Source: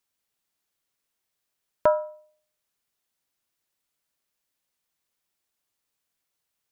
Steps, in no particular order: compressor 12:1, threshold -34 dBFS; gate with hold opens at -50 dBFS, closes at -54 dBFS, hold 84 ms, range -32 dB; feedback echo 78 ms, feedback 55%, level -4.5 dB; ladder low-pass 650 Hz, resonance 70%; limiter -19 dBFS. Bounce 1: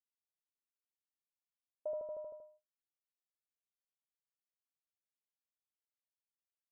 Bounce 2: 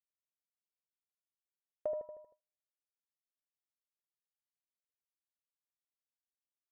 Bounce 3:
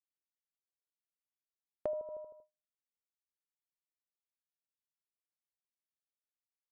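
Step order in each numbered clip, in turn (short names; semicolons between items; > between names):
feedback echo > compressor > limiter > gate with hold > ladder low-pass; limiter > ladder low-pass > compressor > feedback echo > gate with hold; ladder low-pass > limiter > feedback echo > gate with hold > compressor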